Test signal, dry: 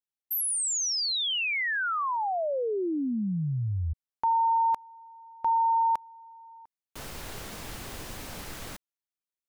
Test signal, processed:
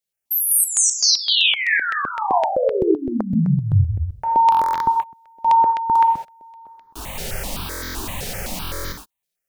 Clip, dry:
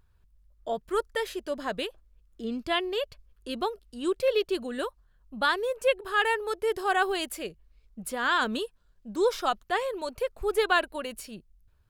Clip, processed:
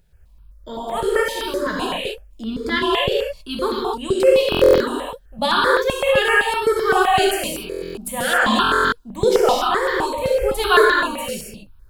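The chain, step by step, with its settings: non-linear reverb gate 0.3 s flat, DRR -4.5 dB; stuck buffer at 4.5/7.67/8.62, samples 1024, times 12; step phaser 7.8 Hz 290–2700 Hz; gain +8 dB

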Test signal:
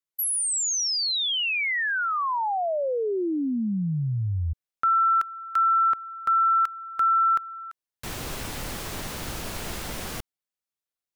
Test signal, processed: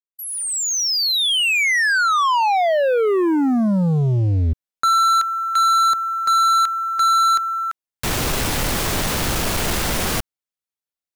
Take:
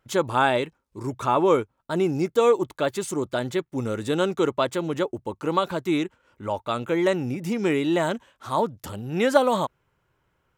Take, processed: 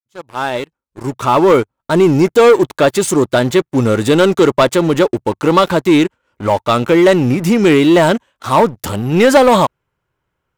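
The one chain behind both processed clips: opening faded in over 2.13 s; sample leveller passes 3; gain +3.5 dB

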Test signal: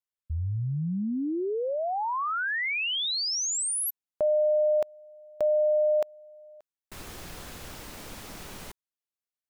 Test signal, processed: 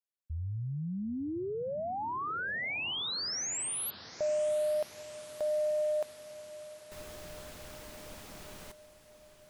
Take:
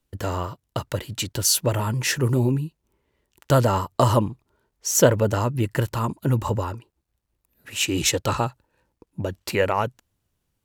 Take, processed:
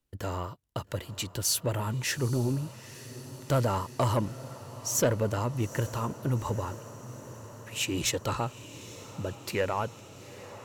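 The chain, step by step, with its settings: soft clip -11 dBFS; on a send: diffused feedback echo 0.865 s, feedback 68%, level -16 dB; on the sum: gain -6.5 dB

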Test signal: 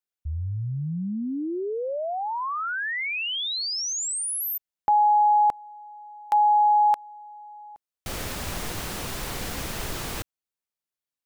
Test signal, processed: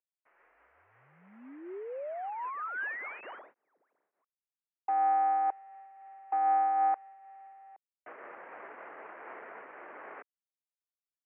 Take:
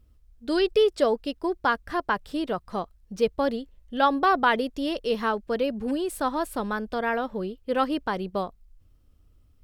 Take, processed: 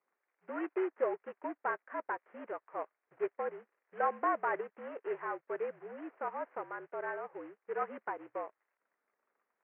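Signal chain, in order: CVSD 16 kbps; mistuned SSB -57 Hz 470–2100 Hz; noise-modulated level, depth 50%; gain -5.5 dB

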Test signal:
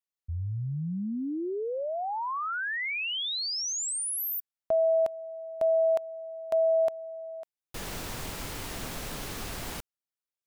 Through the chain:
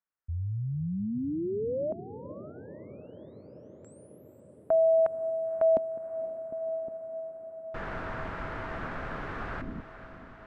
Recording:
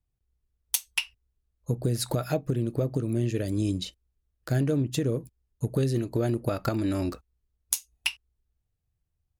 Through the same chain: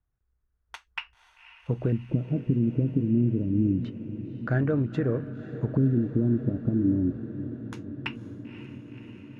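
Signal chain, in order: LFO low-pass square 0.26 Hz 250–1500 Hz; on a send: diffused feedback echo 0.527 s, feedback 73%, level -13.5 dB

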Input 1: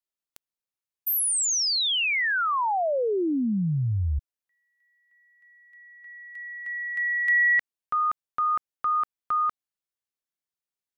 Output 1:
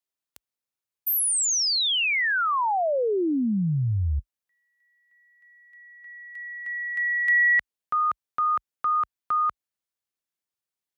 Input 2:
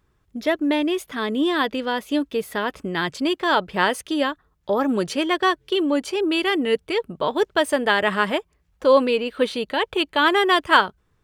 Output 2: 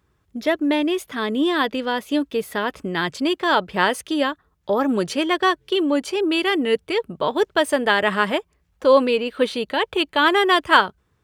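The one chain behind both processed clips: HPF 46 Hz 24 dB/oct; gain +1 dB

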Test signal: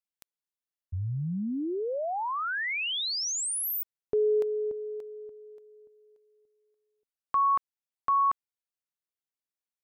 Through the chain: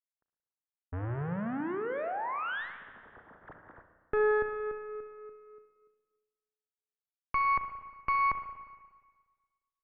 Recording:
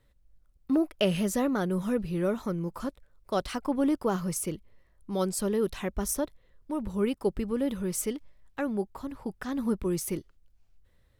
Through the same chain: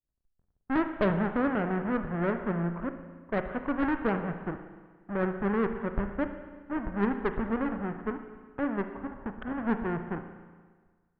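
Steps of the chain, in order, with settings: half-waves squared off; expander -48 dBFS; steep low-pass 1800 Hz 72 dB/oct; added harmonics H 4 -10 dB, 5 -38 dB, 6 -43 dB, 7 -42 dB, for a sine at -10.5 dBFS; spring tank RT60 1.5 s, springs 35/59 ms, chirp 75 ms, DRR 7.5 dB; gain -6.5 dB

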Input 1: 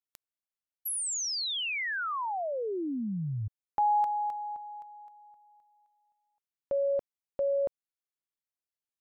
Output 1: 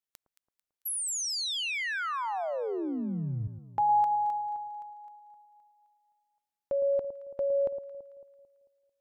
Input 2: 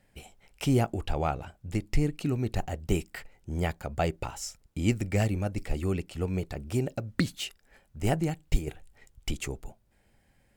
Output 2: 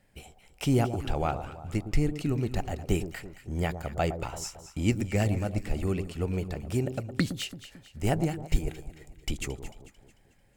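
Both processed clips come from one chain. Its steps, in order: echo with dull and thin repeats by turns 0.111 s, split 1100 Hz, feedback 66%, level -10 dB

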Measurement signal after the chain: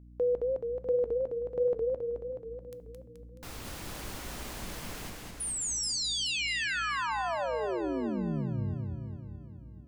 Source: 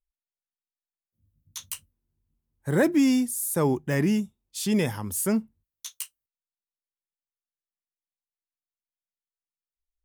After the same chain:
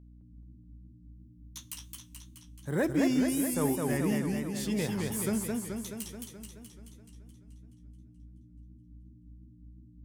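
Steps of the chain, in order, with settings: hum 60 Hz, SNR 16 dB; two-slope reverb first 0.48 s, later 2.1 s, DRR 16 dB; warbling echo 0.214 s, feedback 64%, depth 140 cents, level -3 dB; gain -7.5 dB

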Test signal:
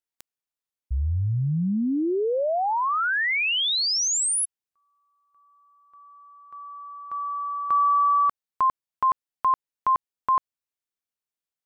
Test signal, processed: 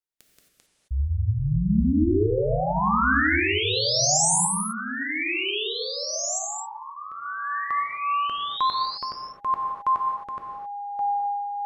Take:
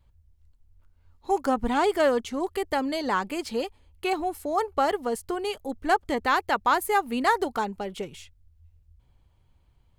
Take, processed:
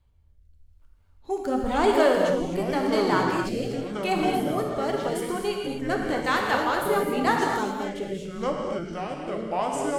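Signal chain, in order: echoes that change speed 94 ms, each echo -6 st, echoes 2, each echo -6 dB; rotary speaker horn 0.9 Hz; non-linear reverb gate 0.29 s flat, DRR 0 dB

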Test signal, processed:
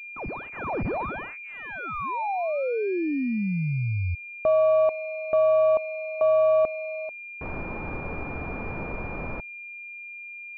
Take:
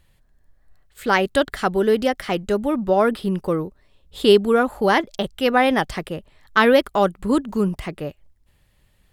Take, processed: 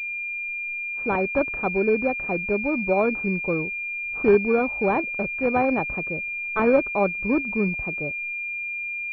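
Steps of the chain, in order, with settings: pulse-width modulation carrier 2400 Hz; gain -3.5 dB

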